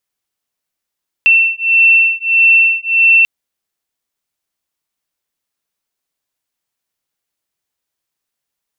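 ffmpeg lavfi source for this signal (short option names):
-f lavfi -i "aevalsrc='0.299*(sin(2*PI*2690*t)+sin(2*PI*2691.6*t))':d=1.99:s=44100"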